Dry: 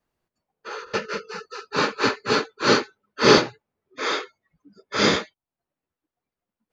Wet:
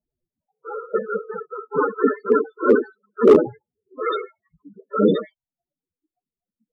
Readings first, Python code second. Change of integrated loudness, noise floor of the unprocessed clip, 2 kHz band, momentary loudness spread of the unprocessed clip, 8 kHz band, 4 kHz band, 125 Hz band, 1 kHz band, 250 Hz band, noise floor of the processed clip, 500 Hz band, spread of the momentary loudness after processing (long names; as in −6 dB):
+2.0 dB, below −85 dBFS, −8.0 dB, 19 LU, can't be measured, below −15 dB, −2.0 dB, −1.5 dB, +4.0 dB, below −85 dBFS, +5.5 dB, 18 LU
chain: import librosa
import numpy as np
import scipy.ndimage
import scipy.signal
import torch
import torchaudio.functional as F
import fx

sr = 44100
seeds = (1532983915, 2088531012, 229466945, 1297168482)

y = fx.noise_reduce_blind(x, sr, reduce_db=9)
y = fx.env_lowpass(y, sr, base_hz=1100.0, full_db=-15.5)
y = fx.mod_noise(y, sr, seeds[0], snr_db=30)
y = fx.spec_topn(y, sr, count=8)
y = np.clip(y, -10.0 ** (-13.0 / 20.0), 10.0 ** (-13.0 / 20.0))
y = y * 10.0 ** (8.0 / 20.0)